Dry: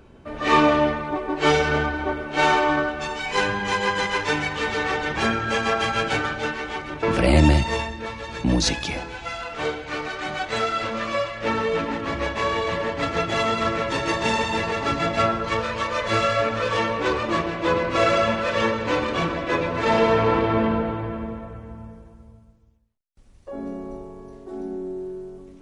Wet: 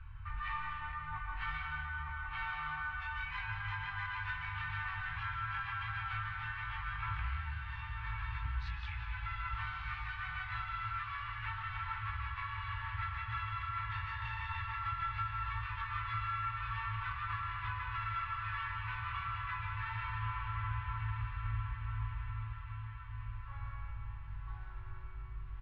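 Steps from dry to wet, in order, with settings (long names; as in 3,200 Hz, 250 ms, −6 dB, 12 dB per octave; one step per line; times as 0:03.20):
inverse Chebyshev band-stop filter 180–650 Hz, stop band 40 dB
bass and treble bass +5 dB, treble −8 dB
downward compressor 6 to 1, threshold −39 dBFS, peak gain reduction 25.5 dB
high-frequency loss of the air 410 metres
double-tracking delay 20 ms −7 dB
feedback delay with all-pass diffusion 1,184 ms, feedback 53%, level −7 dB
on a send at −5 dB: convolution reverb RT60 0.75 s, pre-delay 120 ms
on the sum: level +1 dB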